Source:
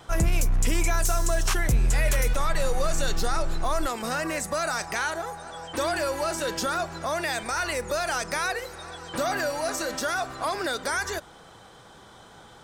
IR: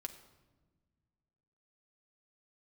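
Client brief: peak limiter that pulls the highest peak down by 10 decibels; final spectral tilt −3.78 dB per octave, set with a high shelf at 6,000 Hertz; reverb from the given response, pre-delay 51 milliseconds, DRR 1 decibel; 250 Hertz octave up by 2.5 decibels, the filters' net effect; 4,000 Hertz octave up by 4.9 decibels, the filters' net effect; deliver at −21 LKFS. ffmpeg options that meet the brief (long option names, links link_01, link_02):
-filter_complex "[0:a]equalizer=frequency=250:width_type=o:gain=3.5,equalizer=frequency=4000:width_type=o:gain=4,highshelf=frequency=6000:gain=5.5,alimiter=limit=-20dB:level=0:latency=1,asplit=2[link_01][link_02];[1:a]atrim=start_sample=2205,adelay=51[link_03];[link_02][link_03]afir=irnorm=-1:irlink=0,volume=2dB[link_04];[link_01][link_04]amix=inputs=2:normalize=0,volume=6.5dB"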